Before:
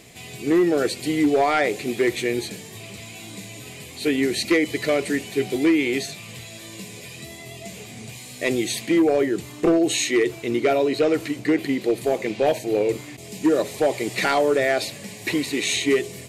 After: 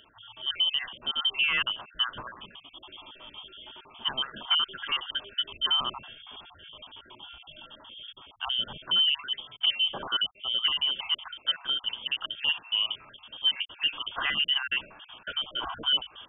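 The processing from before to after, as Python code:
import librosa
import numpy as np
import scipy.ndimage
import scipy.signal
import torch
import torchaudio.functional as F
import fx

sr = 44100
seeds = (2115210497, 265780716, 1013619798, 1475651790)

y = fx.spec_dropout(x, sr, seeds[0], share_pct=43)
y = fx.freq_invert(y, sr, carrier_hz=3400)
y = F.gain(torch.from_numpy(y), -6.0).numpy()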